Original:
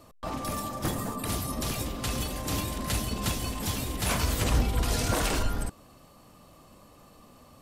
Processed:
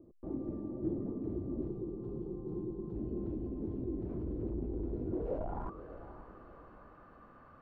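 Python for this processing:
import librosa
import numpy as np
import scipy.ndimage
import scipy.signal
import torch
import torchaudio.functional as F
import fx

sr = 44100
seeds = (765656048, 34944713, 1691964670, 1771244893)

y = fx.fixed_phaser(x, sr, hz=400.0, stages=8, at=(1.68, 2.96))
y = np.clip(10.0 ** (29.5 / 20.0) * y, -1.0, 1.0) / 10.0 ** (29.5 / 20.0)
y = fx.filter_sweep_lowpass(y, sr, from_hz=350.0, to_hz=1500.0, start_s=5.13, end_s=5.83, q=6.0)
y = fx.echo_diffused(y, sr, ms=568, feedback_pct=45, wet_db=-12.5)
y = F.gain(torch.from_numpy(y), -7.5).numpy()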